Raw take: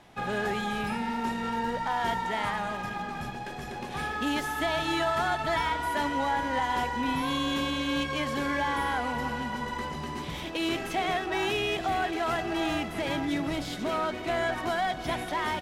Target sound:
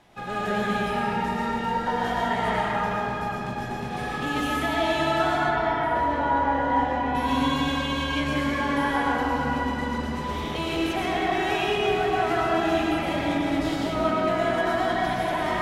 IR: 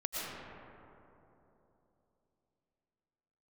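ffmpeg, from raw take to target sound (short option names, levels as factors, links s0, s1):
-filter_complex "[0:a]asettb=1/sr,asplit=3[s0][s1][s2];[s0]atrim=end=5.374[s3];[s1]atrim=start=5.37:end=7.15,asetpts=PTS-STARTPTS,afade=t=in:d=0.004:c=qsin,afade=t=out:st=1.776:d=0.004:c=qsin,lowpass=f=1500:p=1[s4];[s2]atrim=start=7.146[s5];[s3][s4]acrossfade=d=0.004:c1=hsin:c2=qsin[s6];[s6][s5]acrossfade=d=0.004:c1=qsin:c2=hsin[s7];[1:a]atrim=start_sample=2205[s8];[s7][s8]afir=irnorm=-1:irlink=0"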